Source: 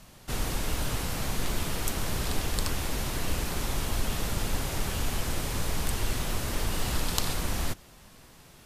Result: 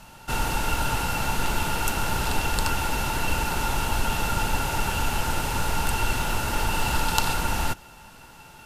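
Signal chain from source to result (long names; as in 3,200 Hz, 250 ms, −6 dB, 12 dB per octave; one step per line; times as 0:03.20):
hollow resonant body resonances 890/1,400/2,700 Hz, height 16 dB, ringing for 45 ms
level +3 dB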